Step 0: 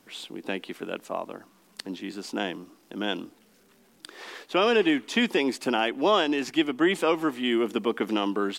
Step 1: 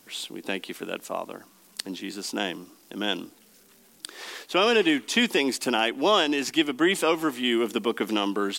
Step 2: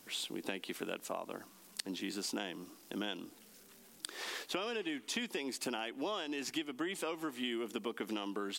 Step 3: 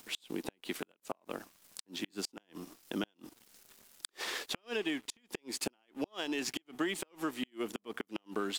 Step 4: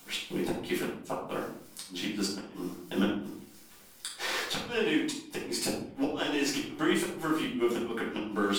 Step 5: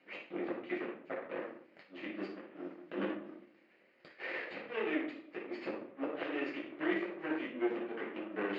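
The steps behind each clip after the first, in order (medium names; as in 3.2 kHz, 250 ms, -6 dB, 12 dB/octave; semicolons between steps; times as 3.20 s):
treble shelf 3.9 kHz +10.5 dB
compression 10:1, threshold -32 dBFS, peak gain reduction 16 dB; trim -3 dB
crossover distortion -58.5 dBFS; upward compressor, threshold -55 dBFS; inverted gate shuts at -27 dBFS, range -37 dB; trim +5 dB
simulated room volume 750 m³, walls furnished, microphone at 7.6 m; trim -2.5 dB
comb filter that takes the minimum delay 0.43 ms; cabinet simulation 290–2800 Hz, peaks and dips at 340 Hz +5 dB, 560 Hz +8 dB, 1.2 kHz +5 dB, 1.9 kHz +5 dB; trim -7.5 dB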